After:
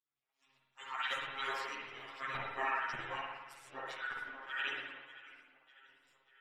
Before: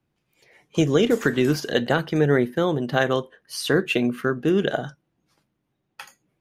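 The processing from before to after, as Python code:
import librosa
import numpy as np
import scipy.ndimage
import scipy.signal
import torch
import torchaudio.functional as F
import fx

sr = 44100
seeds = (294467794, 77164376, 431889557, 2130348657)

y = fx.band_invert(x, sr, width_hz=2000)
y = fx.auto_swell(y, sr, attack_ms=141.0)
y = fx.filter_lfo_bandpass(y, sr, shape='saw_up', hz=1.7, low_hz=670.0, high_hz=2400.0, q=2.7)
y = fx.echo_feedback(y, sr, ms=593, feedback_pct=52, wet_db=-19)
y = fx.robotise(y, sr, hz=134.0)
y = fx.phaser_stages(y, sr, stages=8, low_hz=120.0, high_hz=4900.0, hz=2.8, feedback_pct=10)
y = fx.spec_gate(y, sr, threshold_db=-20, keep='weak')
y = fx.rev_spring(y, sr, rt60_s=1.1, pass_ms=(53,), chirp_ms=75, drr_db=-2.5)
y = fx.ensemble(y, sr)
y = F.gain(torch.from_numpy(y), 12.5).numpy()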